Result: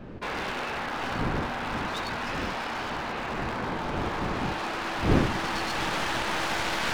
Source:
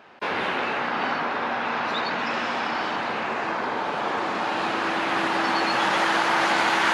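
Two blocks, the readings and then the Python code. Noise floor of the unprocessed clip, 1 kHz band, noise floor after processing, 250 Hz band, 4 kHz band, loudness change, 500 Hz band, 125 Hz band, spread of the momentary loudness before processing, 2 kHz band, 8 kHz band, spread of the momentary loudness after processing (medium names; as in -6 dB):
-28 dBFS, -7.0 dB, -33 dBFS, -0.5 dB, -4.5 dB, -5.0 dB, -4.5 dB, +10.0 dB, 6 LU, -7.0 dB, -1.0 dB, 6 LU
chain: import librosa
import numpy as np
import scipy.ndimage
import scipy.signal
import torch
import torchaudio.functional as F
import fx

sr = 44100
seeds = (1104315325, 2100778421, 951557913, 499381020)

y = np.minimum(x, 2.0 * 10.0 ** (-23.5 / 20.0) - x)
y = fx.dmg_wind(y, sr, seeds[0], corner_hz=290.0, level_db=-29.0)
y = y * librosa.db_to_amplitude(-5.0)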